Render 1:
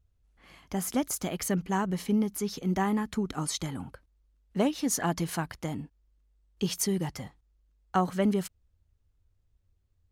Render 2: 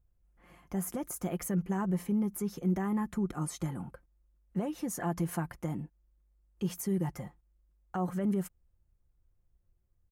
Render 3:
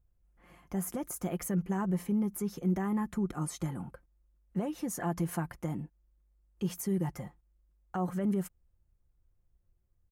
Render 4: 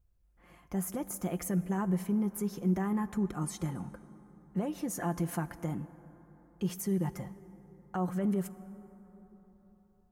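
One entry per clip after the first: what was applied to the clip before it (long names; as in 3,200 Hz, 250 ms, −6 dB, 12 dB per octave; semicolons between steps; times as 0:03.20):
brickwall limiter −23 dBFS, peak gain reduction 9.5 dB; parametric band 4,100 Hz −15 dB 1.5 octaves; comb filter 5.7 ms, depth 46%; level −1.5 dB
no processing that can be heard
dense smooth reverb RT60 4.2 s, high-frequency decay 0.4×, DRR 15 dB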